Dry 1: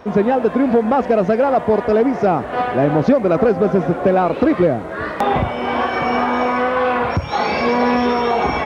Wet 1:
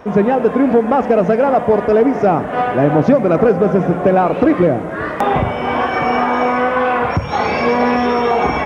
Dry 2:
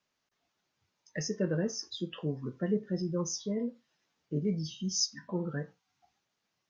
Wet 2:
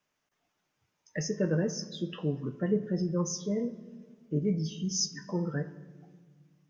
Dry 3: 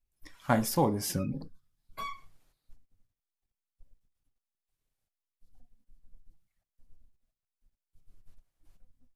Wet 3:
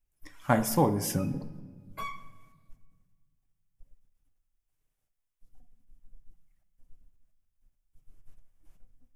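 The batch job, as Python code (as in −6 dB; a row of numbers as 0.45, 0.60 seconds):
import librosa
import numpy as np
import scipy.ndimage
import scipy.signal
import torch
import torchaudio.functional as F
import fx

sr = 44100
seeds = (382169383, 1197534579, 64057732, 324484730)

y = fx.peak_eq(x, sr, hz=4200.0, db=-7.5, octaves=0.5)
y = fx.room_shoebox(y, sr, seeds[0], volume_m3=1900.0, walls='mixed', distance_m=0.44)
y = F.gain(torch.from_numpy(y), 2.0).numpy()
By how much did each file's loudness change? +2.0, +2.0, +1.5 LU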